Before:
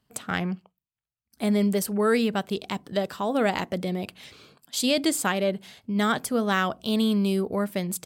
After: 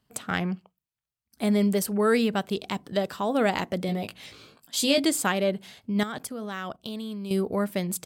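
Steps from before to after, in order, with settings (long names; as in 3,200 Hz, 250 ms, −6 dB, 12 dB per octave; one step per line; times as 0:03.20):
0:03.87–0:05.05: double-tracking delay 18 ms −5 dB
0:06.03–0:07.31: output level in coarse steps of 17 dB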